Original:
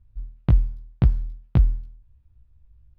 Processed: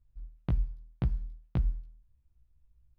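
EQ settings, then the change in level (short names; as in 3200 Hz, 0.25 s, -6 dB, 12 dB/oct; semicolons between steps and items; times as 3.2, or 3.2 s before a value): bell 87 Hz -7.5 dB 0.53 oct; notches 50/100/150/200 Hz; -9.0 dB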